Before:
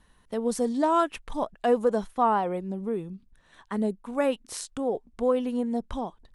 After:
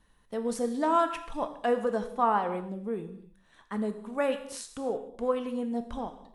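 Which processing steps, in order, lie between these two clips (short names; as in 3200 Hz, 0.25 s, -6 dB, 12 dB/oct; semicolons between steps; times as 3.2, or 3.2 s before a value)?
non-linear reverb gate 0.33 s falling, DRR 7 dB; dynamic EQ 1700 Hz, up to +5 dB, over -38 dBFS, Q 0.74; gain -5 dB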